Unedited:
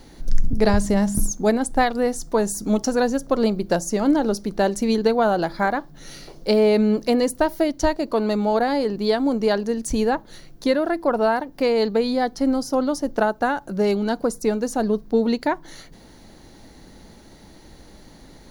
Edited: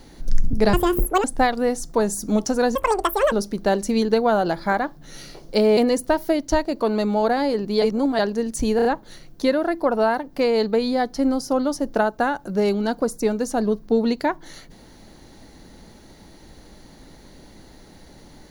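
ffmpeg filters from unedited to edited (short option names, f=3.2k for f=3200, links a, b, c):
-filter_complex "[0:a]asplit=11[a][b][c][d][e][f][g][h][i][j][k];[a]atrim=end=0.734[l];[b]atrim=start=0.73:end=1.62,asetpts=PTS-STARTPTS,asetrate=76734,aresample=44100[m];[c]atrim=start=1.616:end=3.134[n];[d]atrim=start=3.13:end=4.25,asetpts=PTS-STARTPTS,asetrate=86877,aresample=44100,atrim=end_sample=25072,asetpts=PTS-STARTPTS[o];[e]atrim=start=4.246:end=6.702[p];[f]atrim=start=7.078:end=9.132[q];[g]atrim=start=9.128:end=9.502,asetpts=PTS-STARTPTS,areverse[r];[h]atrim=start=9.498:end=10.102[s];[i]atrim=start=10.068:end=10.102[t];[j]atrim=start=10.068:end=10.102[u];[k]atrim=start=10.068[v];[l][m]acrossfade=d=0.004:c1=hsin:c2=hsin[w];[w][n]acrossfade=d=0.004:c1=hsin:c2=hsin[x];[x][o]acrossfade=d=0.004:c1=hsin:c2=hsin[y];[y][p]acrossfade=d=0.004:c1=hsin:c2=hsin[z];[z][q]acrossfade=d=0.004:c1=hsin:c2=hsin[aa];[aa][r]acrossfade=d=0.004:c1=hsin:c2=hsin[ab];[ab][s]acrossfade=d=0.004:c1=hsin:c2=hsin[ac];[ac][t]acrossfade=d=0.004:c1=hsin:c2=hsin[ad];[ad][u]acrossfade=d=0.004:c1=hsin:c2=hsin[ae];[ae][v]acrossfade=d=0.004:c1=hsin:c2=hsin"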